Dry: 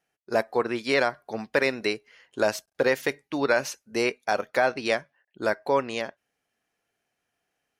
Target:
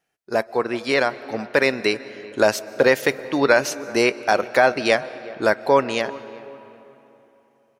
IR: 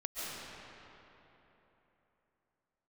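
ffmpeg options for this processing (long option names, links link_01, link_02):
-filter_complex "[0:a]dynaudnorm=framelen=350:gausssize=9:maxgain=5dB,asplit=2[link_01][link_02];[link_02]adelay=382,lowpass=frequency=1200:poles=1,volume=-19dB,asplit=2[link_03][link_04];[link_04]adelay=382,lowpass=frequency=1200:poles=1,volume=0.4,asplit=2[link_05][link_06];[link_06]adelay=382,lowpass=frequency=1200:poles=1,volume=0.4[link_07];[link_01][link_03][link_05][link_07]amix=inputs=4:normalize=0,asplit=2[link_08][link_09];[1:a]atrim=start_sample=2205[link_10];[link_09][link_10]afir=irnorm=-1:irlink=0,volume=-19.5dB[link_11];[link_08][link_11]amix=inputs=2:normalize=0,volume=2dB"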